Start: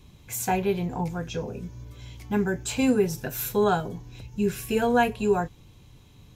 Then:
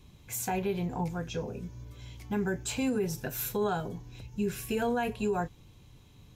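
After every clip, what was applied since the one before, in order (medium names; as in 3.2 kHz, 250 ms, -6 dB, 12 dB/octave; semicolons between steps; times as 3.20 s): peak limiter -18.5 dBFS, peak gain reduction 8 dB; trim -3.5 dB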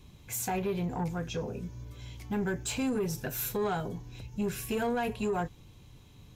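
saturation -26 dBFS, distortion -16 dB; trim +1.5 dB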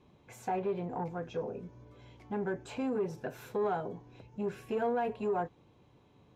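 band-pass filter 590 Hz, Q 0.76; trim +1 dB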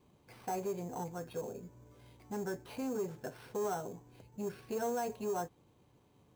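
sample-rate reducer 7 kHz, jitter 0%; trim -4 dB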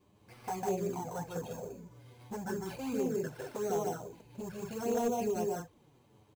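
on a send: loudspeakers at several distances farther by 52 m -1 dB, 68 m -5 dB; on the sum: touch-sensitive flanger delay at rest 10.6 ms, full sweep at -29.5 dBFS; hard clipper -28 dBFS, distortion -23 dB; trim +3 dB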